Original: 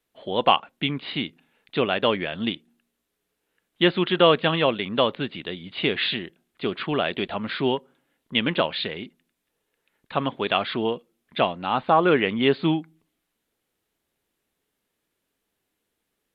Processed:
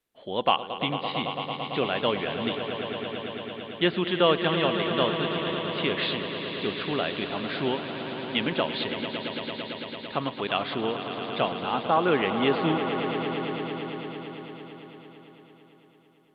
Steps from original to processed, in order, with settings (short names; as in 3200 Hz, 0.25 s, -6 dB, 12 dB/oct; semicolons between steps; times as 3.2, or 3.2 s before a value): swelling echo 0.112 s, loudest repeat 5, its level -11.5 dB; gain -4.5 dB